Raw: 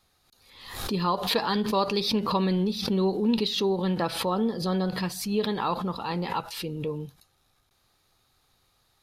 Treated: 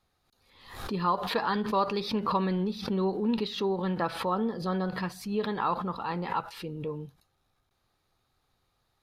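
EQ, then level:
dynamic equaliser 1,400 Hz, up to +7 dB, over −43 dBFS, Q 0.93
high-shelf EQ 2,800 Hz −8.5 dB
−4.0 dB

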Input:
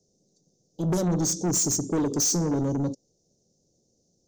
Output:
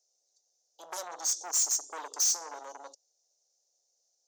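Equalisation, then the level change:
high-pass filter 770 Hz 24 dB per octave
−2.0 dB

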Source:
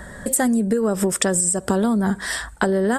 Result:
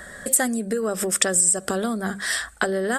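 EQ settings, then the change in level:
low-shelf EQ 440 Hz −11.5 dB
parametric band 930 Hz −12.5 dB 0.22 octaves
mains-hum notches 50/100/150/200 Hz
+2.0 dB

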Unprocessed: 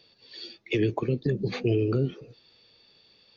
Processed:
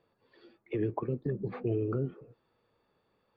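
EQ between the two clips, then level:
low-pass with resonance 1,200 Hz, resonance Q 1.7
−7.0 dB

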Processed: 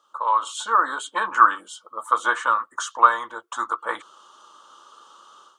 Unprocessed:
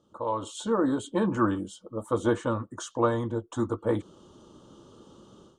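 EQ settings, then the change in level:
dynamic equaliser 1,600 Hz, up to +3 dB, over −41 dBFS, Q 0.98
high-pass with resonance 1,200 Hz, resonance Q 2.4
+7.0 dB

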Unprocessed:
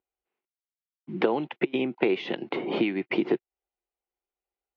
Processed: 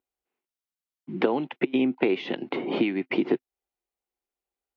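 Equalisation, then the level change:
parametric band 260 Hz +7 dB 0.21 octaves
0.0 dB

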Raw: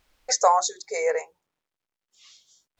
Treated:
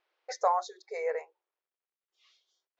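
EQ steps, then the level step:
linear-phase brick-wall high-pass 320 Hz
high-frequency loss of the air 220 metres
−7.0 dB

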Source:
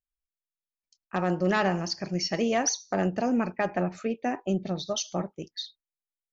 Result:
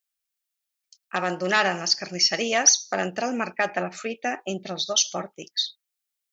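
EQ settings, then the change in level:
spectral tilt +4.5 dB per octave
high-shelf EQ 5,500 Hz −10 dB
notch filter 1,000 Hz, Q 8.8
+5.0 dB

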